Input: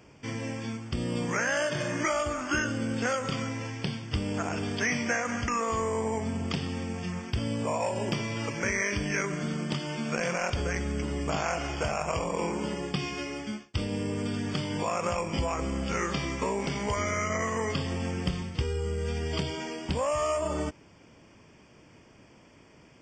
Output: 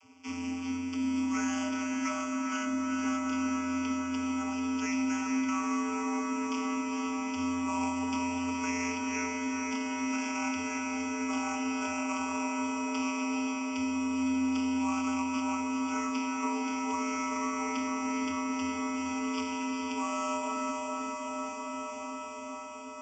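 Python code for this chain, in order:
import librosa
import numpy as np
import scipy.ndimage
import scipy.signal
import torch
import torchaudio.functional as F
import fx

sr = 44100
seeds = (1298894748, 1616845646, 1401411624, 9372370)

y = fx.quant_float(x, sr, bits=2)
y = fx.vocoder(y, sr, bands=32, carrier='square', carrier_hz=87.3)
y = fx.tilt_eq(y, sr, slope=3.5)
y = fx.notch(y, sr, hz=4100.0, q=10.0)
y = fx.echo_diffused(y, sr, ms=450, feedback_pct=76, wet_db=-3.5)
y = fx.rider(y, sr, range_db=4, speed_s=2.0)
y = fx.low_shelf(y, sr, hz=370.0, db=6.5)
y = fx.fixed_phaser(y, sr, hz=2600.0, stages=8)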